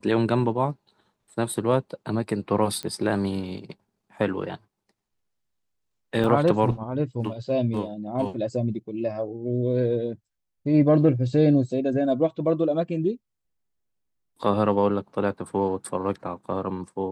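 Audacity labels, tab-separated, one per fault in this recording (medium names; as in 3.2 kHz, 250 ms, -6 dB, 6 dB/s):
2.830000	2.830000	pop -17 dBFS
6.240000	6.240000	dropout 2.4 ms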